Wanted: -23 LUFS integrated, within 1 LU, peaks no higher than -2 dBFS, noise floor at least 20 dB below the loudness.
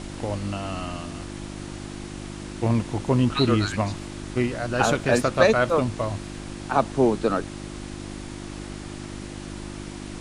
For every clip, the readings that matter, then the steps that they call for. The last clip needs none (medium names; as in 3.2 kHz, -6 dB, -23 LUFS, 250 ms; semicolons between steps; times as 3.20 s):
hum 50 Hz; highest harmonic 350 Hz; hum level -34 dBFS; noise floor -37 dBFS; noise floor target -44 dBFS; loudness -24.0 LUFS; peak level -4.5 dBFS; loudness target -23.0 LUFS
-> de-hum 50 Hz, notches 7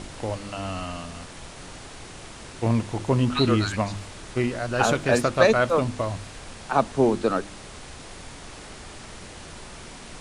hum not found; noise floor -42 dBFS; noise floor target -44 dBFS
-> noise print and reduce 6 dB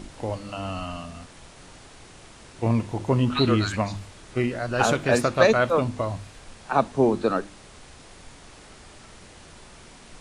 noise floor -48 dBFS; loudness -24.0 LUFS; peak level -5.0 dBFS; loudness target -23.0 LUFS
-> trim +1 dB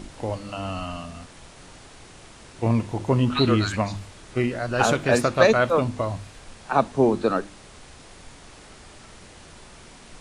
loudness -23.0 LUFS; peak level -4.0 dBFS; noise floor -47 dBFS